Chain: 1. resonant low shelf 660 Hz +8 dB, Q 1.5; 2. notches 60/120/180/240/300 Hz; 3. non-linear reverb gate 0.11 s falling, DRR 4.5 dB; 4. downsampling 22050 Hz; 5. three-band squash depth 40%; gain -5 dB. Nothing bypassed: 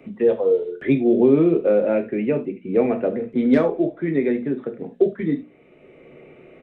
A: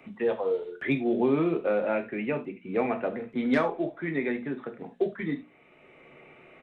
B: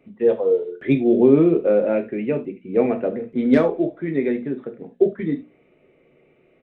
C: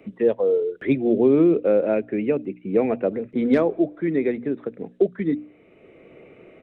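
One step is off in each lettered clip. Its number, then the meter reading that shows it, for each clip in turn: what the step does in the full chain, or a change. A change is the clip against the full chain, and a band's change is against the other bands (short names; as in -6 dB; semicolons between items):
1, 2 kHz band +9.5 dB; 5, momentary loudness spread change +2 LU; 3, 125 Hz band -1.5 dB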